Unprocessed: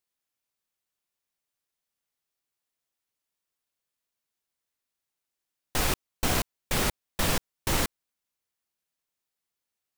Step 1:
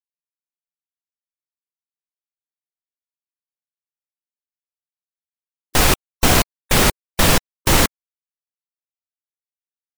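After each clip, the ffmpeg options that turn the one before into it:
ffmpeg -i in.wav -af "acontrast=42,afftfilt=real='re*gte(hypot(re,im),0.02)':imag='im*gte(hypot(re,im),0.02)':win_size=1024:overlap=0.75,volume=6.5dB" out.wav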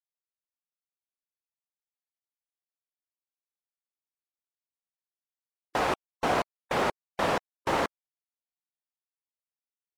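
ffmpeg -i in.wav -af "bandpass=frequency=740:width_type=q:width=0.91:csg=0,volume=-5dB" out.wav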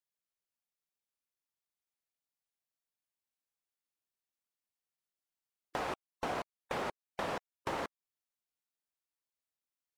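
ffmpeg -i in.wav -af "acompressor=threshold=-39dB:ratio=2.5" out.wav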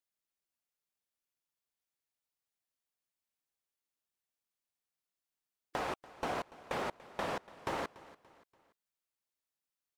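ffmpeg -i in.wav -af "aecho=1:1:288|576|864:0.112|0.046|0.0189" out.wav

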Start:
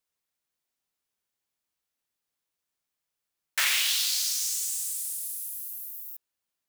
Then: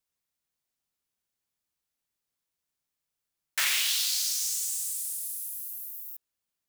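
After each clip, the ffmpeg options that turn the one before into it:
ffmpeg -i in.wav -af "bass=frequency=250:gain=5,treble=frequency=4000:gain=2,volume=-2.5dB" out.wav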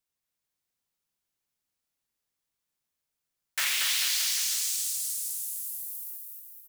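ffmpeg -i in.wav -af "aecho=1:1:230|437|623.3|791|941.9:0.631|0.398|0.251|0.158|0.1,volume=-1.5dB" out.wav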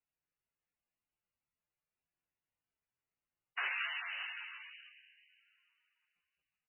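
ffmpeg -i in.wav -af "afreqshift=-190,volume=-5dB" -ar 16000 -c:a libmp3lame -b:a 8k out.mp3

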